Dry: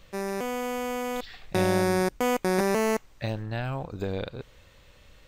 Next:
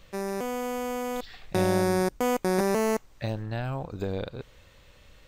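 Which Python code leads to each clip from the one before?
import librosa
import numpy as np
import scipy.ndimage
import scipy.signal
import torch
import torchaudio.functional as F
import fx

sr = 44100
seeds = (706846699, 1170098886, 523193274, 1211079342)

y = fx.dynamic_eq(x, sr, hz=2400.0, q=0.89, threshold_db=-44.0, ratio=4.0, max_db=-4)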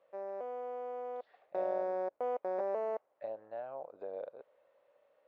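y = fx.ladder_bandpass(x, sr, hz=660.0, resonance_pct=60)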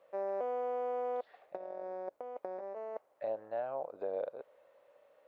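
y = fx.over_compress(x, sr, threshold_db=-39.0, ratio=-0.5)
y = y * 10.0 ** (2.5 / 20.0)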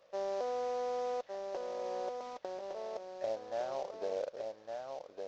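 y = fx.cvsd(x, sr, bps=32000)
y = y + 10.0 ** (-5.0 / 20.0) * np.pad(y, (int(1160 * sr / 1000.0), 0))[:len(y)]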